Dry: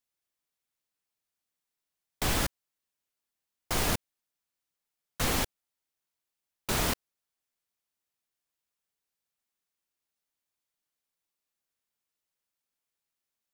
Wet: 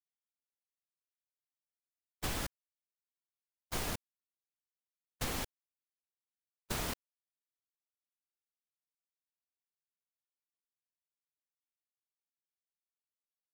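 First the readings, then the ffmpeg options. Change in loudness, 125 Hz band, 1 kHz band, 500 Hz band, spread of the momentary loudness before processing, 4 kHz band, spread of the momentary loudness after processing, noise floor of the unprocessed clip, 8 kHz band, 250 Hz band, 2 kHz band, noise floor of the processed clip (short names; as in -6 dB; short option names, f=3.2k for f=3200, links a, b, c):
-9.0 dB, -8.5 dB, -9.0 dB, -9.0 dB, 7 LU, -9.0 dB, 7 LU, under -85 dBFS, -9.0 dB, -9.0 dB, -9.0 dB, under -85 dBFS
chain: -af "agate=range=-49dB:threshold=-28dB:ratio=16:detection=peak,acompressor=threshold=-37dB:ratio=5,volume=2dB"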